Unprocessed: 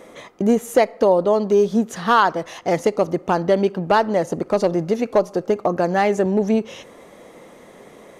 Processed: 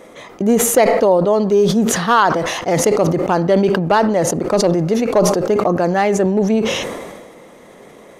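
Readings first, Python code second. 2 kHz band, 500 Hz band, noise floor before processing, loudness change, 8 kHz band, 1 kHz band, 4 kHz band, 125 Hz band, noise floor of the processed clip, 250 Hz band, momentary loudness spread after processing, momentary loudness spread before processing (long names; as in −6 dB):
+4.0 dB, +3.5 dB, −45 dBFS, +4.0 dB, +16.0 dB, +3.0 dB, +8.0 dB, +7.5 dB, −42 dBFS, +4.5 dB, 6 LU, 6 LU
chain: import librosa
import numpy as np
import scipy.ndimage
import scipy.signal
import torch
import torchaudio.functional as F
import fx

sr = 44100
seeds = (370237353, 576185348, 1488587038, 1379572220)

y = fx.sustainer(x, sr, db_per_s=36.0)
y = y * 10.0 ** (2.0 / 20.0)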